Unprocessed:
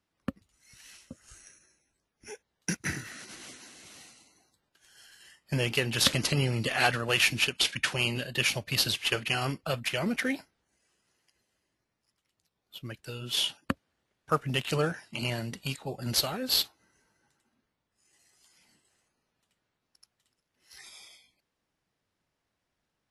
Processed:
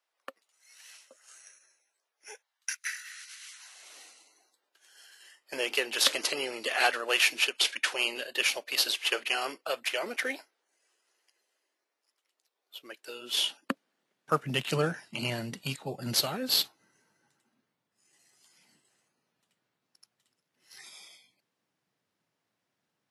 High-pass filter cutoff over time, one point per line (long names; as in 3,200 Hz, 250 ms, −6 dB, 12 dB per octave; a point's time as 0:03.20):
high-pass filter 24 dB per octave
0:02.32 510 Hz
0:02.78 1,500 Hz
0:03.46 1,500 Hz
0:03.98 370 Hz
0:12.91 370 Hz
0:14.69 120 Hz